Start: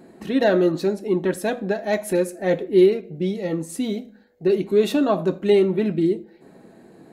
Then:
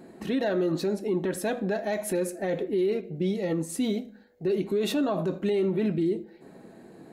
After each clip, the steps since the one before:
brickwall limiter −18 dBFS, peak gain reduction 12 dB
level −1 dB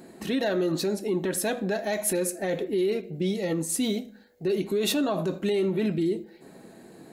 high-shelf EQ 3,100 Hz +9.5 dB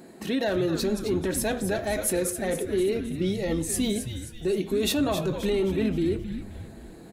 echo with shifted repeats 264 ms, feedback 48%, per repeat −130 Hz, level −9 dB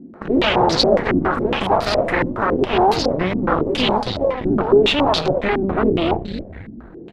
delay with pitch and tempo change per echo 128 ms, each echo +5 semitones, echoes 3, each echo −6 dB
harmonic generator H 8 −12 dB, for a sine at −10.5 dBFS
low-pass on a step sequencer 7.2 Hz 260–4,500 Hz
level +3 dB

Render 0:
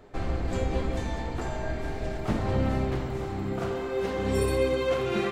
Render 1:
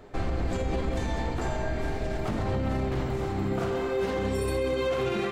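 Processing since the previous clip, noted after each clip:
brickwall limiter −23 dBFS, peak gain reduction 9 dB
level +3 dB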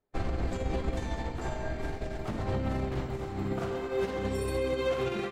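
expander for the loud parts 2.5 to 1, over −48 dBFS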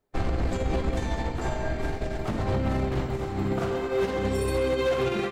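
hard clipping −25.5 dBFS, distortion −20 dB
level +5.5 dB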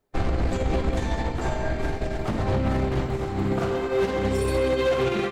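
highs frequency-modulated by the lows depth 0.15 ms
level +2.5 dB

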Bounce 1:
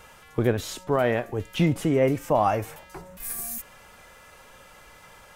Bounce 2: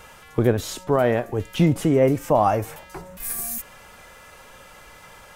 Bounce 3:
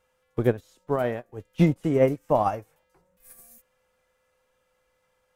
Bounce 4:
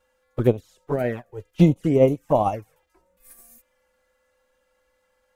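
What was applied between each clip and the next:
dynamic equaliser 2,500 Hz, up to −5 dB, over −39 dBFS, Q 0.8; level +4 dB
steady tone 510 Hz −44 dBFS; expander for the loud parts 2.5 to 1, over −32 dBFS
flanger swept by the level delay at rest 3.6 ms, full sweep at −19 dBFS; level +4.5 dB

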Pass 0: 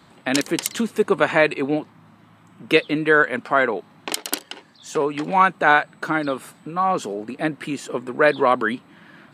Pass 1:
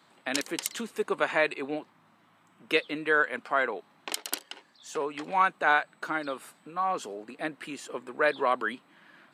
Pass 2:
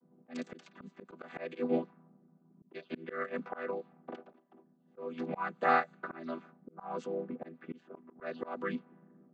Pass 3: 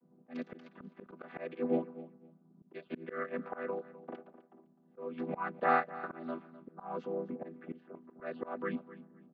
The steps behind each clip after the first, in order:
high-pass filter 490 Hz 6 dB per octave; level −7 dB
channel vocoder with a chord as carrier minor triad, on E3; low-pass that shuts in the quiet parts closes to 360 Hz, open at −26.5 dBFS; volume swells 344 ms
high-frequency loss of the air 260 metres; repeating echo 255 ms, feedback 20%, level −17 dB

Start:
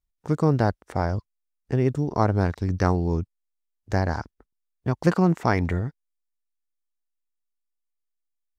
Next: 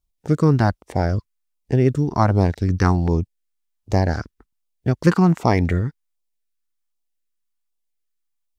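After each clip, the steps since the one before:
auto-filter notch saw down 1.3 Hz 360–1,900 Hz
level +5.5 dB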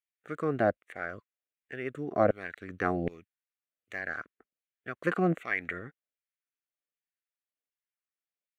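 auto-filter high-pass saw down 1.3 Hz 470–2,000 Hz
spectral tilt −3.5 dB per octave
phaser with its sweep stopped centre 2,200 Hz, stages 4
level −2.5 dB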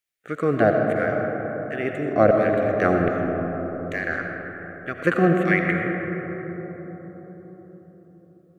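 parametric band 940 Hz −9.5 dB 0.33 octaves
comb and all-pass reverb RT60 4.9 s, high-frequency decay 0.25×, pre-delay 45 ms, DRR 1.5 dB
level +8.5 dB

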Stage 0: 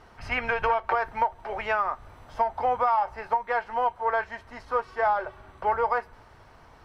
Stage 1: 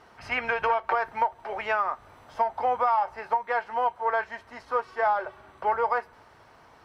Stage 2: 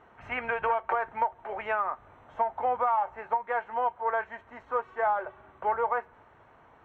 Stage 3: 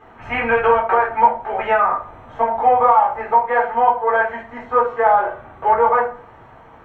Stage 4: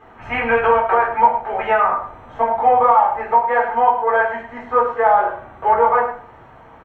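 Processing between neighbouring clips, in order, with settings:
high-pass filter 200 Hz 6 dB per octave
moving average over 9 samples; level −2 dB
rectangular room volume 260 cubic metres, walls furnished, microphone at 3.9 metres; level +5 dB
single-tap delay 104 ms −11 dB

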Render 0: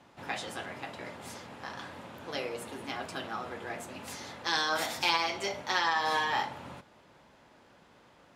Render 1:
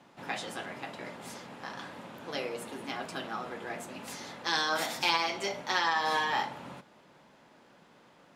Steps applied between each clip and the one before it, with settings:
low shelf with overshoot 120 Hz −7 dB, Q 1.5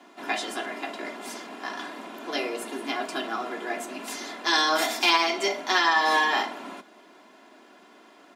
Butterworth high-pass 180 Hz 72 dB per octave
comb filter 2.9 ms, depth 66%
level +5.5 dB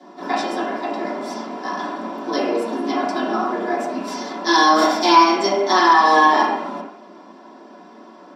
convolution reverb RT60 0.70 s, pre-delay 3 ms, DRR −8.5 dB
level −6 dB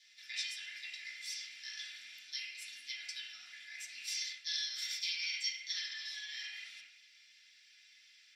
reversed playback
downward compressor 6 to 1, threshold −24 dBFS, peak gain reduction 16 dB
reversed playback
elliptic high-pass filter 2,100 Hz, stop band 50 dB
level −1 dB

